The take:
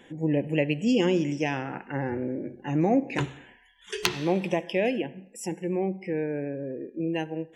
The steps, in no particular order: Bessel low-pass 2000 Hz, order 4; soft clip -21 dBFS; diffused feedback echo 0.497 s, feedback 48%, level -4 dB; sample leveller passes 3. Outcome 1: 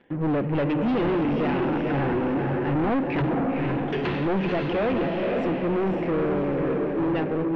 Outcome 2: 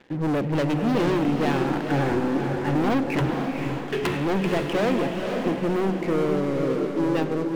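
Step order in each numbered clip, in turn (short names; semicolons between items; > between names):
sample leveller > diffused feedback echo > soft clip > Bessel low-pass; Bessel low-pass > sample leveller > soft clip > diffused feedback echo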